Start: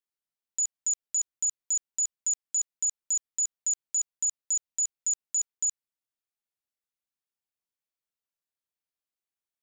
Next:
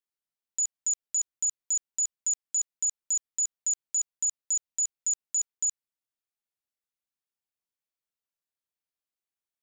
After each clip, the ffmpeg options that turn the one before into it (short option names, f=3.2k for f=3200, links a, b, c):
-af anull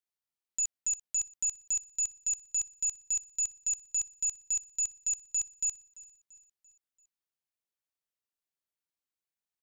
-af "aeval=exprs='0.0794*(cos(1*acos(clip(val(0)/0.0794,-1,1)))-cos(1*PI/2))+0.000447*(cos(2*acos(clip(val(0)/0.0794,-1,1)))-cos(2*PI/2))+0.00355*(cos(6*acos(clip(val(0)/0.0794,-1,1)))-cos(6*PI/2))':c=same,aecho=1:1:340|680|1020|1360:0.1|0.049|0.024|0.0118,volume=-3dB"